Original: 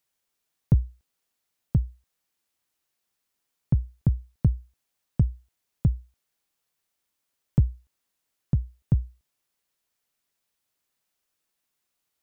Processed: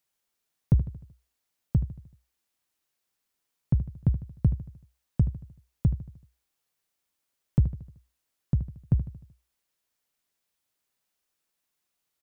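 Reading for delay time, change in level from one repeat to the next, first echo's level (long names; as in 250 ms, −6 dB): 76 ms, −6.0 dB, −12.5 dB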